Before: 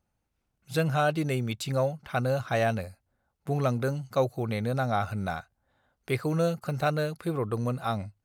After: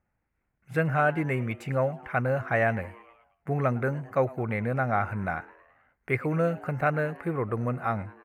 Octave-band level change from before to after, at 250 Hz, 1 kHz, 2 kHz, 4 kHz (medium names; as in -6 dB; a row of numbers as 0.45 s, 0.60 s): 0.0 dB, +1.5 dB, +5.0 dB, under -10 dB